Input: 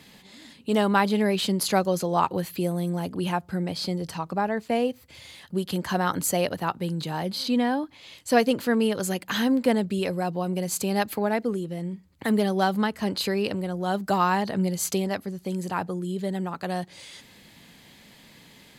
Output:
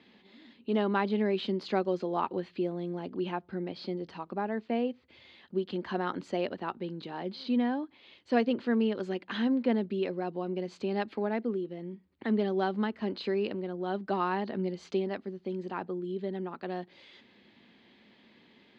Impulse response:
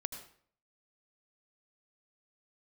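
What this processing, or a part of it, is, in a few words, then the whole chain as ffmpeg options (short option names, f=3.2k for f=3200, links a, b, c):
guitar cabinet: -af "highpass=82,equalizer=f=94:t=q:w=4:g=-8,equalizer=f=150:t=q:w=4:g=-10,equalizer=f=230:t=q:w=4:g=6,equalizer=f=370:t=q:w=4:g=8,lowpass=f=3.9k:w=0.5412,lowpass=f=3.9k:w=1.3066,volume=-8.5dB"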